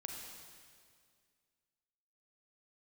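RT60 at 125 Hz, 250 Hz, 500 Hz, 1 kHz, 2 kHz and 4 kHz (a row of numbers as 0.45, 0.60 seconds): 2.2, 2.3, 2.2, 2.0, 2.0, 2.0 seconds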